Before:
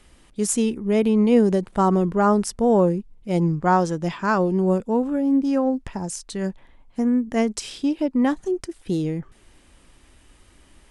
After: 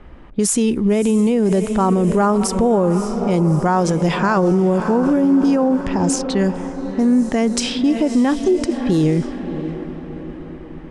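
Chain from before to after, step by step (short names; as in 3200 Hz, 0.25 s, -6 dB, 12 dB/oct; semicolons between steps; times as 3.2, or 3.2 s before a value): in parallel at -0.5 dB: compressor, threshold -26 dBFS, peak gain reduction 14 dB; on the sum: diffused feedback echo 0.608 s, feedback 53%, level -13 dB; low-pass opened by the level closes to 1300 Hz, open at -16 dBFS; limiter -16 dBFS, peak gain reduction 11.5 dB; gain +7.5 dB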